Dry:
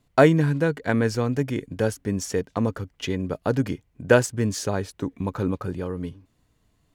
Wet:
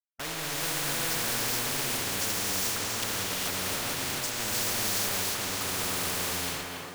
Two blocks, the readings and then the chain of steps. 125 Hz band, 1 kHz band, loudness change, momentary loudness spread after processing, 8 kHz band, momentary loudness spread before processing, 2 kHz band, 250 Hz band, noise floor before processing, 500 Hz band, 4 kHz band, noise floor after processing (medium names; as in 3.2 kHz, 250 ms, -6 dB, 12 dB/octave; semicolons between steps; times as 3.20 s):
-15.0 dB, -4.0 dB, -3.5 dB, 3 LU, +8.5 dB, 11 LU, -2.0 dB, -15.0 dB, -68 dBFS, -15.0 dB, +9.0 dB, -39 dBFS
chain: low-pass 5 kHz; de-hum 54.85 Hz, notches 19; dynamic bell 560 Hz, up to -4 dB, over -34 dBFS, Q 0.71; waveshaping leveller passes 2; reverse; compression 16:1, threshold -20 dBFS, peak gain reduction 10 dB; reverse; slow attack 348 ms; saturation -26.5 dBFS, distortion -10 dB; bit crusher 7-bit; on a send: thinning echo 281 ms, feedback 41%, level -11 dB; on the sum: gated-style reverb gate 460 ms rising, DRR -7.5 dB; spectrum-flattening compressor 4:1; trim -8.5 dB